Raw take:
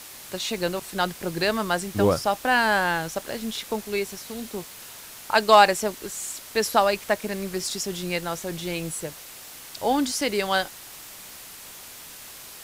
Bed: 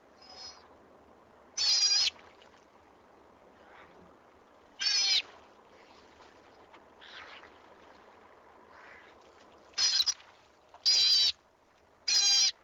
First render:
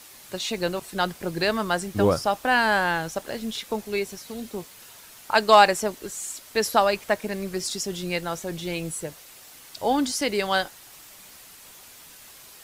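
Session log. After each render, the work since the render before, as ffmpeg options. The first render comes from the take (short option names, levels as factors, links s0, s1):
-af "afftdn=nr=6:nf=-43"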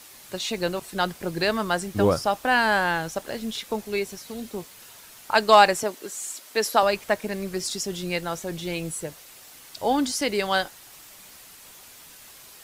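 -filter_complex "[0:a]asettb=1/sr,asplit=3[s0][s1][s2];[s0]atrim=end=5.834[s3];[s1]atrim=start=5.83:end=6.83,asetpts=PTS-STARTPTS,afade=t=in:d=0.004:c=qsin,afade=t=out:st=0.996:d=0.004:c=qsin,highpass=240[s4];[s2]atrim=start=6.826[s5];[s3][s4]acrossfade=d=0.004:c1=hsin:c2=qsin[s6];[s6][s5]acrossfade=d=0.004:c1=qsin:c2=hsin"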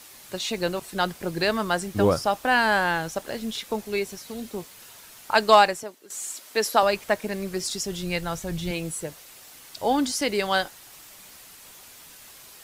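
-filter_complex "[0:a]asettb=1/sr,asplit=3[s0][s1][s2];[s0]atrim=end=7.614[s3];[s1]atrim=start=7.61:end=8.71,asetpts=PTS-STARTPTS,afade=t=in:d=0.004:c=qsin,afade=t=out:st=1.096:d=0.004:c=qsin,asubboost=boost=12:cutoff=150[s4];[s2]atrim=start=8.706[s5];[s3][s4]acrossfade=d=0.004:c1=hsin:c2=qsin[s6];[s6][s5]acrossfade=d=0.004:c1=qsin:c2=hsin,asplit=2[s7][s8];[s7]atrim=end=6.1,asetpts=PTS-STARTPTS,afade=t=out:st=5.53:d=0.57:c=qua:silence=0.199526[s9];[s8]atrim=start=6.1,asetpts=PTS-STARTPTS,afade=t=in:d=0.004:c=hsin:silence=0.199526[s10];[s9][s10]concat=n=2:v=0:a=1"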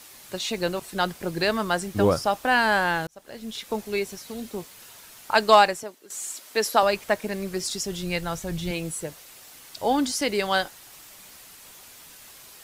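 -filter_complex "[0:a]asplit=2[s0][s1];[s0]atrim=end=3.07,asetpts=PTS-STARTPTS,afade=t=out:st=3.066:d=0.004:c=hsin[s2];[s1]atrim=start=3.07,asetpts=PTS-STARTPTS,afade=t=in:d=0.69[s3];[s2][s3]concat=n=2:v=0:a=1"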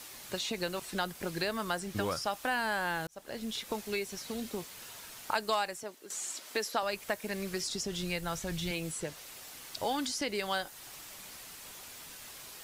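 -filter_complex "[0:a]acrossover=split=1200|7400[s0][s1][s2];[s0]acompressor=threshold=0.0178:ratio=4[s3];[s1]acompressor=threshold=0.0158:ratio=4[s4];[s2]acompressor=threshold=0.00355:ratio=4[s5];[s3][s4][s5]amix=inputs=3:normalize=0"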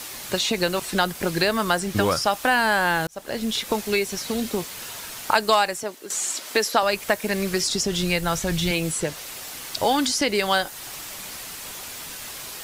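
-af "volume=3.98"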